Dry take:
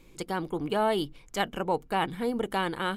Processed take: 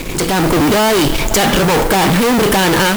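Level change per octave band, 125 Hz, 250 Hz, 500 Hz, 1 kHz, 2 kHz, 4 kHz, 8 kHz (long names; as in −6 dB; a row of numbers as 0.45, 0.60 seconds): +21.5, +18.5, +16.0, +14.5, +18.5, +20.0, +28.5 decibels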